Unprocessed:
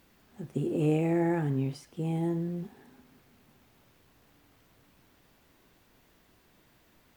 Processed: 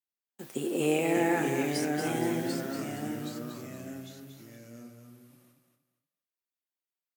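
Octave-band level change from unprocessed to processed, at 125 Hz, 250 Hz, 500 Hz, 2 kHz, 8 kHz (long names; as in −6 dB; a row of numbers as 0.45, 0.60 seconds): −6.5 dB, +0.5 dB, +3.0 dB, +10.0 dB, can't be measured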